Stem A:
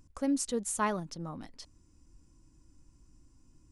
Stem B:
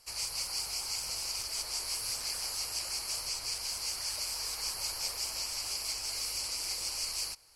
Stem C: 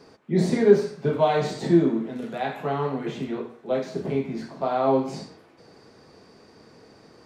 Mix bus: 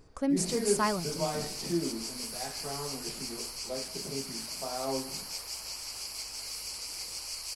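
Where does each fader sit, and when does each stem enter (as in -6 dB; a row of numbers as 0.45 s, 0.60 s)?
+1.5 dB, -3.5 dB, -13.0 dB; 0.00 s, 0.30 s, 0.00 s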